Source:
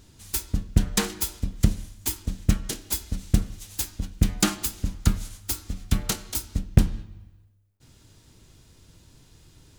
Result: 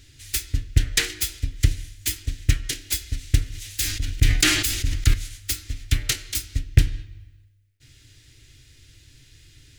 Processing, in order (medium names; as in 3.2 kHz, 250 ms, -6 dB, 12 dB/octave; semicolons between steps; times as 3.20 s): FFT filter 140 Hz 0 dB, 190 Hz -30 dB, 270 Hz -3 dB, 1 kHz -16 dB, 1.9 kHz +7 dB, 13 kHz -2 dB; 3.46–5.14 s: decay stretcher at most 52 dB/s; trim +2.5 dB